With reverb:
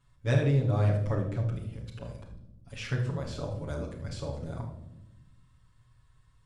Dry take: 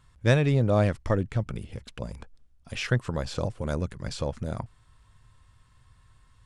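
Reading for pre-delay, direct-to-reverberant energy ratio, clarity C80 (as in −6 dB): 7 ms, −4.5 dB, 9.5 dB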